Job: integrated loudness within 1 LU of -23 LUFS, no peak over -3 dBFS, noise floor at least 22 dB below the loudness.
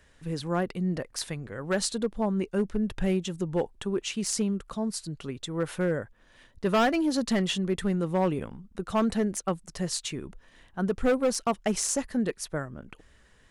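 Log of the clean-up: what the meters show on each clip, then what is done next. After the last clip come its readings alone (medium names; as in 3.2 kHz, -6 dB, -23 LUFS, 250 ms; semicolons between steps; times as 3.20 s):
clipped samples 1.0%; clipping level -19.0 dBFS; loudness -29.0 LUFS; peak level -19.0 dBFS; loudness target -23.0 LUFS
-> clip repair -19 dBFS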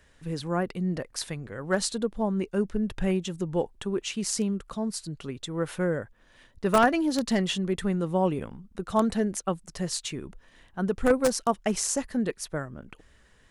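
clipped samples 0.0%; loudness -28.5 LUFS; peak level -10.0 dBFS; loudness target -23.0 LUFS
-> trim +5.5 dB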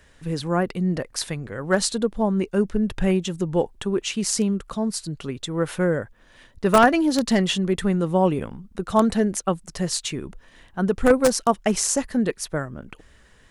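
loudness -23.0 LUFS; peak level -4.5 dBFS; noise floor -54 dBFS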